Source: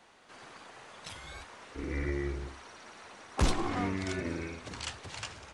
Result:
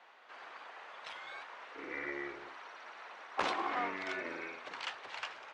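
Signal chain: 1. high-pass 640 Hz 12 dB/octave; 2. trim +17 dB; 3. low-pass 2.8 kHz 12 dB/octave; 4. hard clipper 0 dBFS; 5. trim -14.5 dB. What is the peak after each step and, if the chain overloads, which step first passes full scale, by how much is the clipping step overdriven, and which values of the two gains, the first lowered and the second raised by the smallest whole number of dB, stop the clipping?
-18.5 dBFS, -1.5 dBFS, -2.5 dBFS, -2.5 dBFS, -17.0 dBFS; nothing clips

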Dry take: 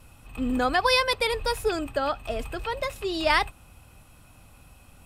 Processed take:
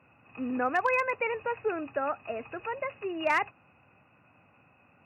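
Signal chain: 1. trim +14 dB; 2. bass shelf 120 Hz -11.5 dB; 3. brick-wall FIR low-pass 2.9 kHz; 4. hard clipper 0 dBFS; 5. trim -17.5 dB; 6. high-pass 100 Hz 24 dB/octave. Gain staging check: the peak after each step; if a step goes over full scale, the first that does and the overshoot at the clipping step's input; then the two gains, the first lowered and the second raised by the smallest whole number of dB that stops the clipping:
+5.5 dBFS, +5.0 dBFS, +3.0 dBFS, 0.0 dBFS, -17.5 dBFS, -15.5 dBFS; step 1, 3.0 dB; step 1 +11 dB, step 5 -14.5 dB

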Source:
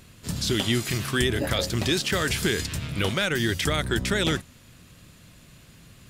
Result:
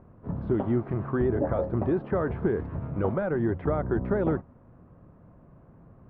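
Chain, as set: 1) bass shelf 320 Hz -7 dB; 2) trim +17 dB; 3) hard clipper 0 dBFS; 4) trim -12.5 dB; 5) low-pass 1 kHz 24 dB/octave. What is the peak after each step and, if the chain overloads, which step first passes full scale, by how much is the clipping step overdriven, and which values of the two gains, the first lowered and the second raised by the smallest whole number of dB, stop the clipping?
-12.0 dBFS, +5.0 dBFS, 0.0 dBFS, -12.5 dBFS, -13.0 dBFS; step 2, 5.0 dB; step 2 +12 dB, step 4 -7.5 dB

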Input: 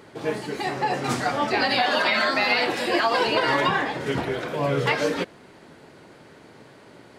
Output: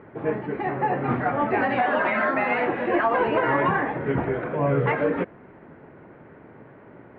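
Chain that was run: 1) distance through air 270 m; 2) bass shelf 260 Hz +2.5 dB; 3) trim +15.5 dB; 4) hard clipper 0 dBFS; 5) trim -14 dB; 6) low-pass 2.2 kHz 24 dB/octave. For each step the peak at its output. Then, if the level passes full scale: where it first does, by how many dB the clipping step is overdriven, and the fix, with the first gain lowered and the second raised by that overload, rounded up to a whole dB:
-10.5 dBFS, -10.0 dBFS, +5.5 dBFS, 0.0 dBFS, -14.0 dBFS, -13.0 dBFS; step 3, 5.5 dB; step 3 +9.5 dB, step 5 -8 dB

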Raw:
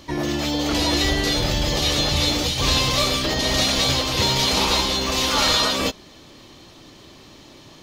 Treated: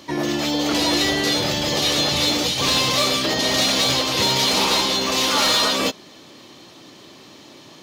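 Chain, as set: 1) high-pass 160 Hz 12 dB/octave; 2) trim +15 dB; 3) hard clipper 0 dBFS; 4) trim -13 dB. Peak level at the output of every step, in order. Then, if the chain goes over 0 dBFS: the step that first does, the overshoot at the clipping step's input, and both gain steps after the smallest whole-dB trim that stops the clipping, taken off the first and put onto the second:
-6.0 dBFS, +9.0 dBFS, 0.0 dBFS, -13.0 dBFS; step 2, 9.0 dB; step 2 +6 dB, step 4 -4 dB

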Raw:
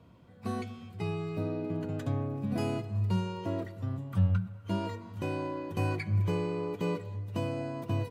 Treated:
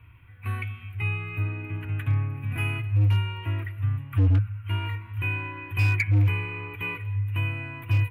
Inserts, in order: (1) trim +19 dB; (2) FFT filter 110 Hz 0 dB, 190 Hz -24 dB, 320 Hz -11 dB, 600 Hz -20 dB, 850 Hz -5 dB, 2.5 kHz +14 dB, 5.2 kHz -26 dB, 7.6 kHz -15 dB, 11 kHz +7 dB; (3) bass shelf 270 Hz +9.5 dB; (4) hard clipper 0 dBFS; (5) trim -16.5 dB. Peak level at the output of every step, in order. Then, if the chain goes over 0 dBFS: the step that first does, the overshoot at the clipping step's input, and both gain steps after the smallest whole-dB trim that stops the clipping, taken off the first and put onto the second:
+2.5 dBFS, +3.5 dBFS, +8.5 dBFS, 0.0 dBFS, -16.5 dBFS; step 1, 8.5 dB; step 1 +10 dB, step 5 -7.5 dB

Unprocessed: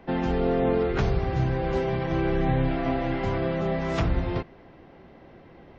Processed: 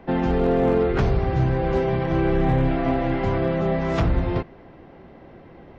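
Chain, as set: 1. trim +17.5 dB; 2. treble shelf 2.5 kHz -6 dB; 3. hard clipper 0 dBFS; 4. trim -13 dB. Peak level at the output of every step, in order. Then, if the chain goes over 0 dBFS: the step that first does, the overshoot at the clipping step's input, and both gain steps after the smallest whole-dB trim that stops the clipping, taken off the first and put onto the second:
+6.0 dBFS, +6.0 dBFS, 0.0 dBFS, -13.0 dBFS; step 1, 6.0 dB; step 1 +11.5 dB, step 4 -7 dB

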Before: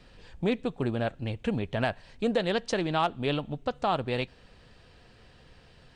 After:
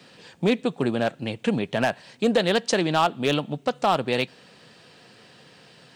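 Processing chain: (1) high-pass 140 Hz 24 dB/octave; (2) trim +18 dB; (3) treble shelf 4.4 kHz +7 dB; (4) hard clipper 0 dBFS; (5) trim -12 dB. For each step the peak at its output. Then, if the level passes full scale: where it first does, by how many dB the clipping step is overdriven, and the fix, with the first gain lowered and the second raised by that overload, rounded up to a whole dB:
-11.5 dBFS, +6.5 dBFS, +7.5 dBFS, 0.0 dBFS, -12.0 dBFS; step 2, 7.5 dB; step 2 +10 dB, step 5 -4 dB

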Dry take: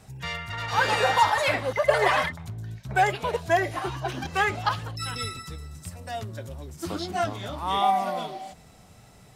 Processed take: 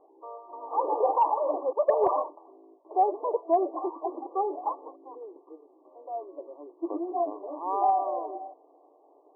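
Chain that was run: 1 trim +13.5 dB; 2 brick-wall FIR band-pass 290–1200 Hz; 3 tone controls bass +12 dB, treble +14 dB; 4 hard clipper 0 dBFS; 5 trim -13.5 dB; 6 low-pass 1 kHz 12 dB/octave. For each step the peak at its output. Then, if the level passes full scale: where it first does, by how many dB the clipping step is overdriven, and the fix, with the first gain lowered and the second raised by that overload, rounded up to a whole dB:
+5.0 dBFS, +5.5 dBFS, +6.0 dBFS, 0.0 dBFS, -13.5 dBFS, -13.0 dBFS; step 1, 6.0 dB; step 1 +7.5 dB, step 5 -7.5 dB

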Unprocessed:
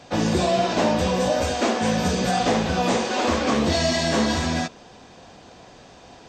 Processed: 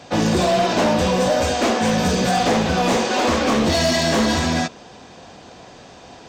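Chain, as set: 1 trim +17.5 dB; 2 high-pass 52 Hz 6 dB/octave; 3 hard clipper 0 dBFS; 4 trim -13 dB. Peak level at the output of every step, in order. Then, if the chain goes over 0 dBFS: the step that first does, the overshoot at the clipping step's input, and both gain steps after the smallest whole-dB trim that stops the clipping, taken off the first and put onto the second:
+8.5 dBFS, +8.5 dBFS, 0.0 dBFS, -13.0 dBFS; step 1, 8.5 dB; step 1 +8.5 dB, step 4 -4 dB

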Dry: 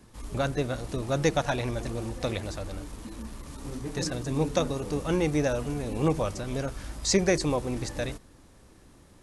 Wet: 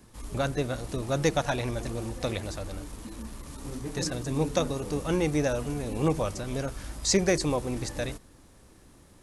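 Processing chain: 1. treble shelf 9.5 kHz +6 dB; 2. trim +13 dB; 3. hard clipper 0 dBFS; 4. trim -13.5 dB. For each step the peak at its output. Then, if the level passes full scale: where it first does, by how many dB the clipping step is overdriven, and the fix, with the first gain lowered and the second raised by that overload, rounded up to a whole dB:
-9.5 dBFS, +3.5 dBFS, 0.0 dBFS, -13.5 dBFS; step 2, 3.5 dB; step 2 +9 dB, step 4 -9.5 dB

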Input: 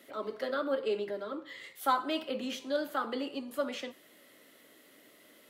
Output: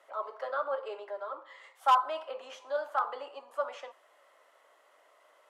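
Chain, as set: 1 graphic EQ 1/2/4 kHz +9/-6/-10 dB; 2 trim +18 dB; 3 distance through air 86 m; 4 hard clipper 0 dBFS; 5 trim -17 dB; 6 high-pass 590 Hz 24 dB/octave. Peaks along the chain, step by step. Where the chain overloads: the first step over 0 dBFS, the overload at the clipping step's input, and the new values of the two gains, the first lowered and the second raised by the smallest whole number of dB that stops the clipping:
-12.0 dBFS, +6.0 dBFS, +5.5 dBFS, 0.0 dBFS, -17.0 dBFS, -14.0 dBFS; step 2, 5.5 dB; step 2 +12 dB, step 5 -11 dB

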